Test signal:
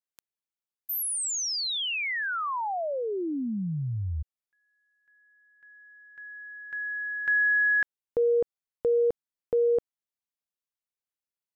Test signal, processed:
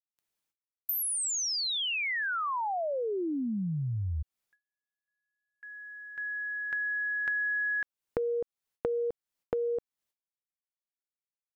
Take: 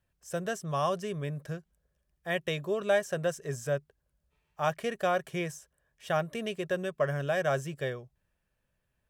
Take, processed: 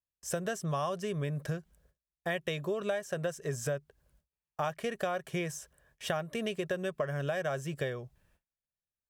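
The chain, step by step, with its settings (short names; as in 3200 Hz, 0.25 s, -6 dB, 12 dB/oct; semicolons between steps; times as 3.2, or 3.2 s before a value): gate with hold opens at -50 dBFS, closes at -53 dBFS, hold 0.28 s, range -32 dB; compressor 6:1, threshold -39 dBFS; gain +8 dB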